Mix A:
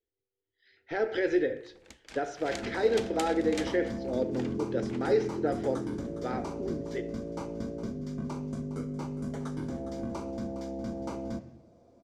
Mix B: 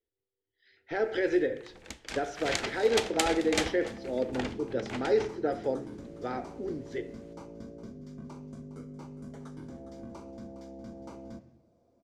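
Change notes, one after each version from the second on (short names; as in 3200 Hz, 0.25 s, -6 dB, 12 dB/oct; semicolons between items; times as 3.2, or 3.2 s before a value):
first sound +9.0 dB; second sound -8.5 dB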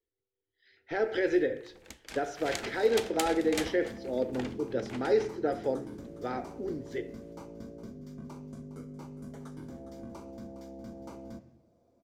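first sound -5.5 dB; master: remove LPF 8800 Hz 12 dB/oct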